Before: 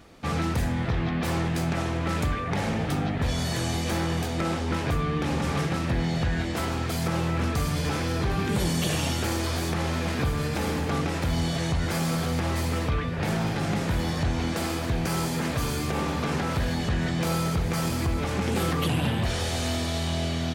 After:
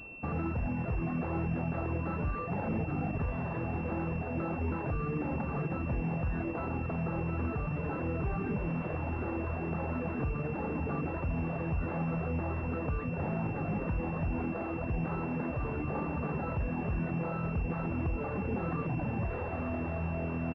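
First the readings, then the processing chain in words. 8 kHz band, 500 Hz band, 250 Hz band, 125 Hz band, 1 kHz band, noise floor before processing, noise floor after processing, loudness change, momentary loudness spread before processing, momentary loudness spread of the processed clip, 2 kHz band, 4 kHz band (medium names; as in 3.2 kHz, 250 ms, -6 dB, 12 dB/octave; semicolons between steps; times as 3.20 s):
under -40 dB, -6.0 dB, -6.0 dB, -7.0 dB, -7.5 dB, -29 dBFS, -37 dBFS, -7.0 dB, 2 LU, 2 LU, -9.0 dB, under -25 dB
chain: reverb removal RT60 1.5 s; peak limiter -25 dBFS, peak gain reduction 7.5 dB; on a send: delay 867 ms -13.5 dB; on the sum: class-D stage that switches slowly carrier 2.7 kHz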